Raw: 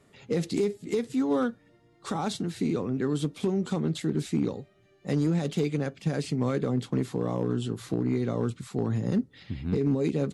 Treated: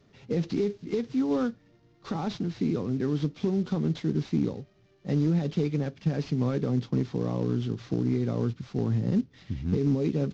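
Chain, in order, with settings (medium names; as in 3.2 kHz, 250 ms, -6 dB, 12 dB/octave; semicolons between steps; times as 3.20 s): CVSD coder 32 kbps; bass shelf 340 Hz +8 dB; trim -4.5 dB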